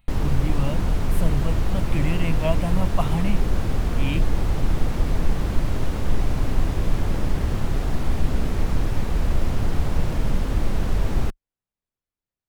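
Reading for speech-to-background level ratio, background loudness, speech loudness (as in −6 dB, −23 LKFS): −2.5 dB, −26.5 LKFS, −29.0 LKFS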